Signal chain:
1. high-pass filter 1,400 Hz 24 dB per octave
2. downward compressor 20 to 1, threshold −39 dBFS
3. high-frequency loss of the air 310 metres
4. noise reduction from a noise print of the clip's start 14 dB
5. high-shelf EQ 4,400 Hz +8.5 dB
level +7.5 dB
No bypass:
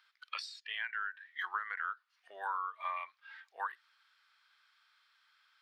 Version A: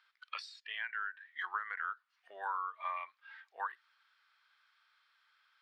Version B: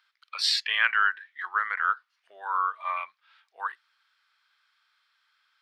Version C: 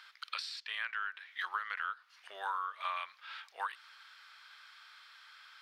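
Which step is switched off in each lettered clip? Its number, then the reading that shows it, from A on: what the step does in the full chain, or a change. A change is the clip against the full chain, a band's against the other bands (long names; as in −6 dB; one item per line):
5, 4 kHz band −3.0 dB
2, average gain reduction 6.0 dB
4, 4 kHz band +3.5 dB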